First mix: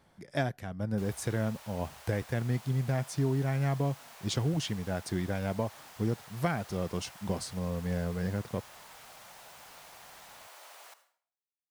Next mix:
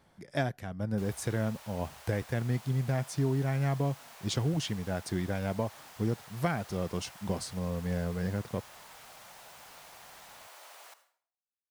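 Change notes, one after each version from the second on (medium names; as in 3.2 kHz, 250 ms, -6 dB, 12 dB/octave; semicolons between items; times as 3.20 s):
no change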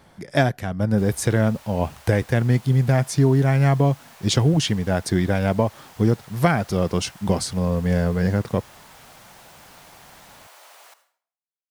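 speech +12.0 dB; background +3.5 dB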